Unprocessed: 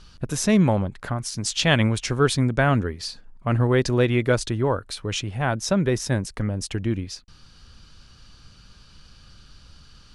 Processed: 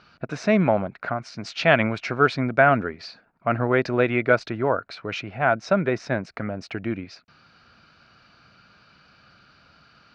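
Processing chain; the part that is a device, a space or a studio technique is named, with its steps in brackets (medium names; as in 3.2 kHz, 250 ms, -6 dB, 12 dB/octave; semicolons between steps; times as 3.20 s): kitchen radio (cabinet simulation 160–4300 Hz, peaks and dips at 670 Hz +10 dB, 1.4 kHz +9 dB, 2.3 kHz +7 dB, 3.3 kHz -8 dB); trim -1.5 dB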